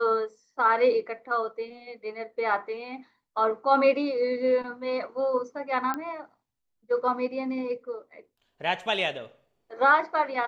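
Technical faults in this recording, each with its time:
5.94 s: pop -17 dBFS

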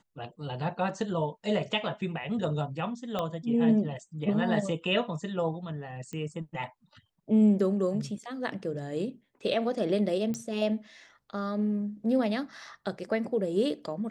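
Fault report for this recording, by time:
3.19 s: pop -18 dBFS
6.13 s: pop -26 dBFS
10.34 s: pop -22 dBFS

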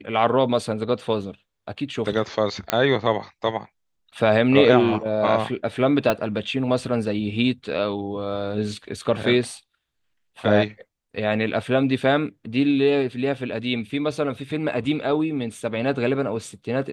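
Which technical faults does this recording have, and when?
2.70 s: pop -4 dBFS
6.10 s: pop -7 dBFS

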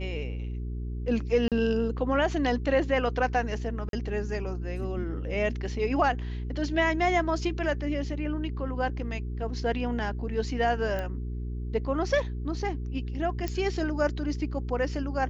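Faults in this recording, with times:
hum 60 Hz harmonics 7 -33 dBFS
1.48–1.52 s: dropout 37 ms
3.89–3.93 s: dropout 42 ms
10.99 s: pop -20 dBFS
13.48 s: pop -17 dBFS

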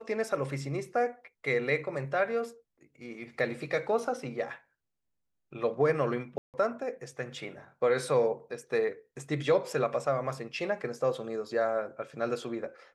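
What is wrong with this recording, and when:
6.38–6.54 s: dropout 158 ms

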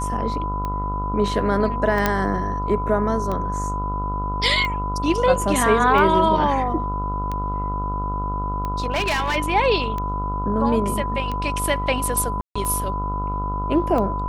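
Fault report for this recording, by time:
buzz 50 Hz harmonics 28 -27 dBFS
tick 45 rpm -15 dBFS
whine 1 kHz -26 dBFS
2.06 s: pop -4 dBFS
8.91–9.37 s: clipped -18 dBFS
12.41–12.55 s: dropout 145 ms

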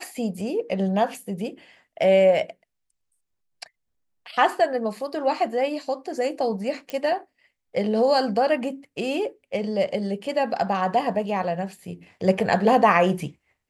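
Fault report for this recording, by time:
6.90 s: pop -17 dBFS

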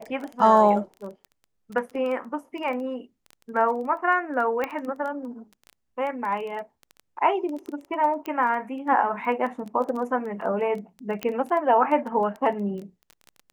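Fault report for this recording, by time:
crackle 14 per s -31 dBFS
4.64 s: pop -15 dBFS
8.26 s: pop -19 dBFS
11.23 s: pop -14 dBFS

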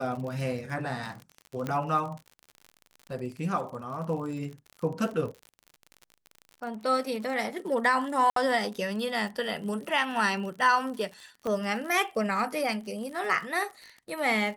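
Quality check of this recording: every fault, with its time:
crackle 57 per s -36 dBFS
1.67 s: pop -18 dBFS
8.30–8.36 s: dropout 63 ms
11.47 s: pop -21 dBFS

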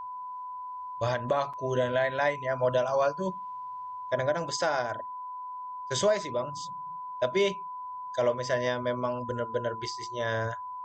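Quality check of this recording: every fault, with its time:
whine 1 kHz -36 dBFS
1.53–1.54 s: dropout 5.8 ms

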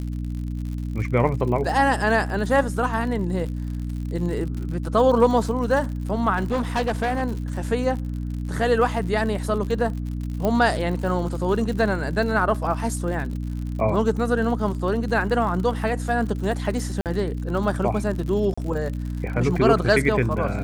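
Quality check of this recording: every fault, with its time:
crackle 72 per s -31 dBFS
hum 60 Hz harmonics 5 -28 dBFS
6.36–7.23 s: clipped -18.5 dBFS
10.45 s: pop -12 dBFS
17.01–17.06 s: dropout 48 ms
18.54–18.57 s: dropout 35 ms

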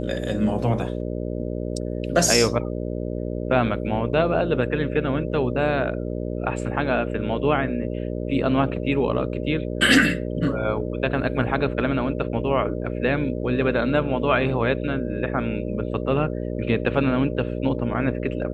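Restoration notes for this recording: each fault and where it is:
buzz 60 Hz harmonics 10 -28 dBFS

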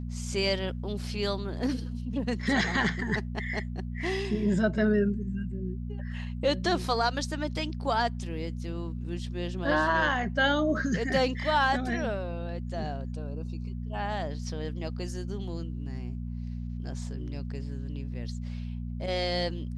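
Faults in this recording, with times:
hum 60 Hz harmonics 4 -35 dBFS

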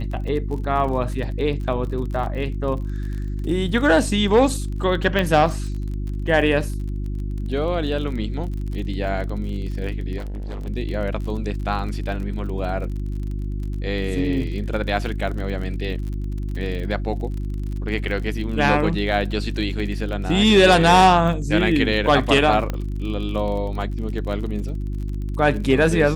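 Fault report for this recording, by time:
crackle 38 per s -30 dBFS
hum 50 Hz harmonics 7 -26 dBFS
5.19 s: pop -10 dBFS
10.17–10.68 s: clipped -27 dBFS
22.70 s: pop -12 dBFS

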